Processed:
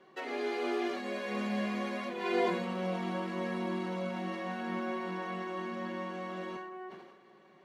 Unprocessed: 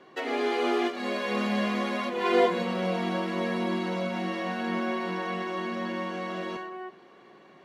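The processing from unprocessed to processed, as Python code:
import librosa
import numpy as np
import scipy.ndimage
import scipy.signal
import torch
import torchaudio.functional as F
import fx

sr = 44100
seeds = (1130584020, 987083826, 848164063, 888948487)

y = x + 0.39 * np.pad(x, (int(5.3 * sr / 1000.0), 0))[:len(x)]
y = fx.sustainer(y, sr, db_per_s=52.0)
y = y * 10.0 ** (-8.0 / 20.0)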